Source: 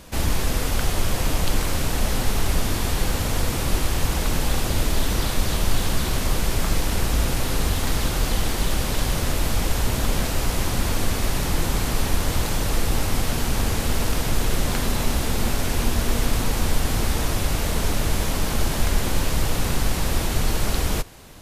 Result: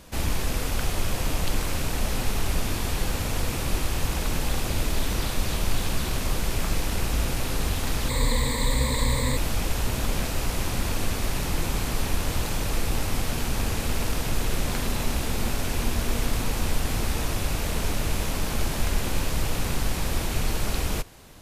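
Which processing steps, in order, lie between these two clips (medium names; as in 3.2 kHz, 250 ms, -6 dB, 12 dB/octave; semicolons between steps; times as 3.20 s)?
rattle on loud lows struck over -28 dBFS, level -25 dBFS; 8.09–9.37 s: rippled EQ curve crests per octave 1, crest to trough 17 dB; trim -4 dB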